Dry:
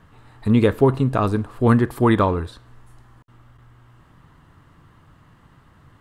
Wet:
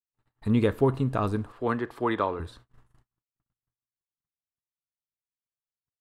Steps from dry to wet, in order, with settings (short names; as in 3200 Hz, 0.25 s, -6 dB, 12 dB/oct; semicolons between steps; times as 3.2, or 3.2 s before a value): gate -43 dBFS, range -54 dB; 1.52–2.4 three-band isolator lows -13 dB, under 310 Hz, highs -14 dB, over 5700 Hz; gain -7 dB